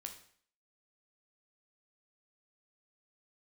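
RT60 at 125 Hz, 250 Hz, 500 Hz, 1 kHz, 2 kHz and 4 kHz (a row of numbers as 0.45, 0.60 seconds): 0.50, 0.55, 0.55, 0.55, 0.55, 0.55 seconds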